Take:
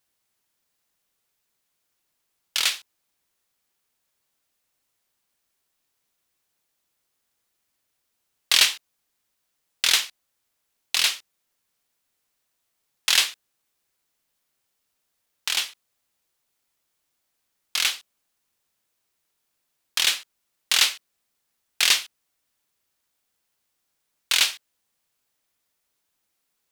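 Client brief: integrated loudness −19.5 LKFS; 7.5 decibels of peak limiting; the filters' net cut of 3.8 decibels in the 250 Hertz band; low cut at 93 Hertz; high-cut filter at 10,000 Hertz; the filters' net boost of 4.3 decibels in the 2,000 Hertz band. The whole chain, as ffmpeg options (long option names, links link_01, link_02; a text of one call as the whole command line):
ffmpeg -i in.wav -af "highpass=93,lowpass=10000,equalizer=frequency=250:width_type=o:gain=-5.5,equalizer=frequency=2000:width_type=o:gain=5.5,volume=3.5dB,alimiter=limit=-4.5dB:level=0:latency=1" out.wav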